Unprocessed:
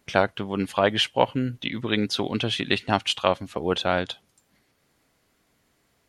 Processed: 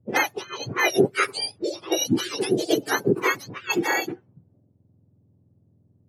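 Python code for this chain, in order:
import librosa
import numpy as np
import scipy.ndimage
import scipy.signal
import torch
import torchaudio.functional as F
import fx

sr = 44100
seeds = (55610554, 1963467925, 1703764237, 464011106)

y = fx.octave_mirror(x, sr, pivot_hz=1100.0)
y = fx.env_lowpass(y, sr, base_hz=340.0, full_db=-23.5)
y = y * librosa.db_to_amplitude(2.5)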